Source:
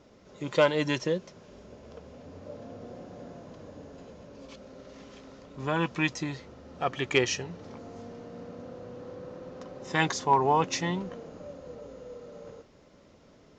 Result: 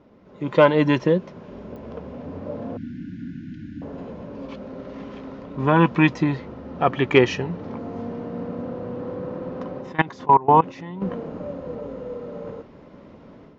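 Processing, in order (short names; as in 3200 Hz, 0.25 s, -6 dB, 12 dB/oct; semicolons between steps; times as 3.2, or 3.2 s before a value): 2.77–3.82 brick-wall FIR band-stop 340–1400 Hz; 9.81–11.02 level quantiser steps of 23 dB; LPF 2700 Hz 12 dB/oct; bell 970 Hz +4.5 dB 0.4 oct; AGC gain up to 8.5 dB; bell 220 Hz +6 dB 1.7 oct; pops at 1.76, -31 dBFS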